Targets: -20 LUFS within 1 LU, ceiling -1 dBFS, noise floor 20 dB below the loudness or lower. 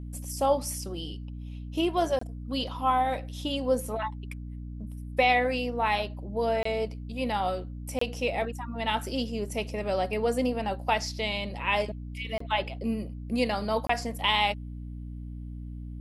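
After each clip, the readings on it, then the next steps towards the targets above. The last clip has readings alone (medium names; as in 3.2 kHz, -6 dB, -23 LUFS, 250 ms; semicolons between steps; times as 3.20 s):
dropouts 5; longest dropout 24 ms; hum 60 Hz; highest harmonic 300 Hz; hum level -36 dBFS; loudness -29.0 LUFS; peak level -10.0 dBFS; loudness target -20.0 LUFS
-> interpolate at 2.19/6.63/7.99/12.38/13.87 s, 24 ms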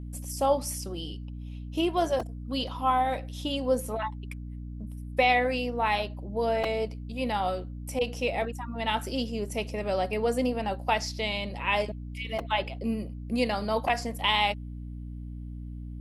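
dropouts 0; hum 60 Hz; highest harmonic 300 Hz; hum level -36 dBFS
-> de-hum 60 Hz, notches 5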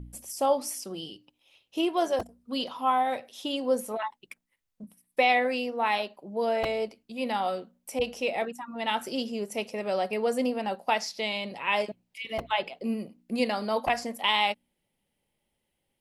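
hum not found; loudness -29.0 LUFS; peak level -10.5 dBFS; loudness target -20.0 LUFS
-> trim +9 dB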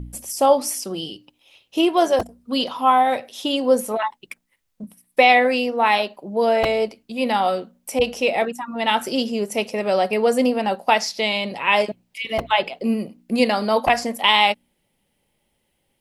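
loudness -20.5 LUFS; peak level -1.5 dBFS; noise floor -71 dBFS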